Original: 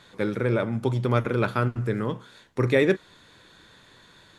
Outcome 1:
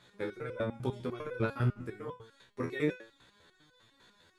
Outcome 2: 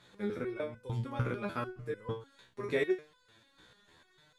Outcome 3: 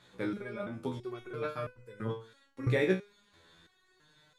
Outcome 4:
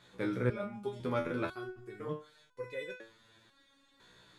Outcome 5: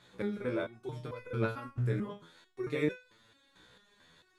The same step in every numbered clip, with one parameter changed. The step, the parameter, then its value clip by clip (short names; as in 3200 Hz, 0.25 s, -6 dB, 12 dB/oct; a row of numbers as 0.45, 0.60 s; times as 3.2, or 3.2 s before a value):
stepped resonator, rate: 10, 6.7, 3, 2, 4.5 Hz